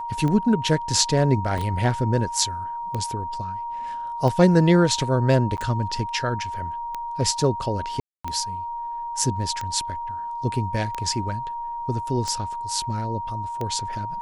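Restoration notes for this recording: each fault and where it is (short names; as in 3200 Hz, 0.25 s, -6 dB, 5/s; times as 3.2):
tick 45 rpm -16 dBFS
tone 940 Hz -28 dBFS
1.58 gap 3.4 ms
5.57–5.58 gap 9.5 ms
8–8.24 gap 0.245 s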